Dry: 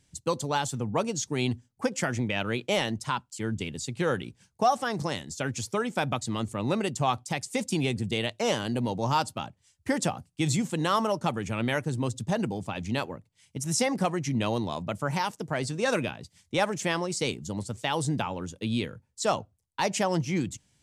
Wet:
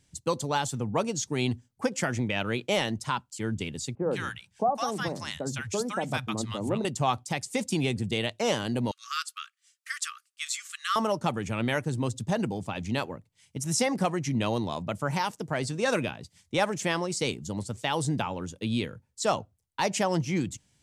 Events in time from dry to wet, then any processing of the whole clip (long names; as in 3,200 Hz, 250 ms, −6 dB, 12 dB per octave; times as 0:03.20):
0:03.95–0:06.85: three-band delay without the direct sound mids, lows, highs 60/160 ms, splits 160/980 Hz
0:08.91–0:10.96: linear-phase brick-wall high-pass 1,100 Hz